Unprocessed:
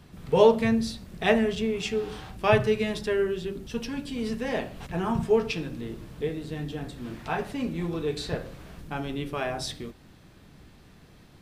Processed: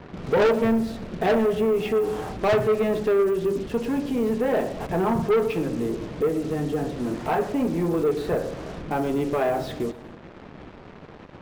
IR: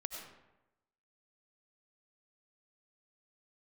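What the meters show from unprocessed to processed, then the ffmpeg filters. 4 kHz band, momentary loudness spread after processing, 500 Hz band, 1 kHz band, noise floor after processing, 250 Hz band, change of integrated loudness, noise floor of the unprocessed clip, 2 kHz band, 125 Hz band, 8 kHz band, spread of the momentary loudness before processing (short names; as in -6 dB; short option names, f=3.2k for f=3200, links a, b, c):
-4.0 dB, 10 LU, +4.5 dB, +3.5 dB, -45 dBFS, +4.5 dB, +3.5 dB, -53 dBFS, 0.0 dB, +1.5 dB, -1.5 dB, 14 LU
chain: -filter_complex "[0:a]lowpass=2.5k,equalizer=f=500:w=0.45:g=12.5,asplit=2[a][b];[b]acompressor=threshold=-26dB:ratio=6,volume=2.5dB[c];[a][c]amix=inputs=2:normalize=0,acrusher=bits=5:mix=0:aa=0.5,asoftclip=type=tanh:threshold=-11.5dB,asplit=2[d][e];[1:a]atrim=start_sample=2205,adelay=117[f];[e][f]afir=irnorm=-1:irlink=0,volume=-15dB[g];[d][g]amix=inputs=2:normalize=0,volume=-4.5dB"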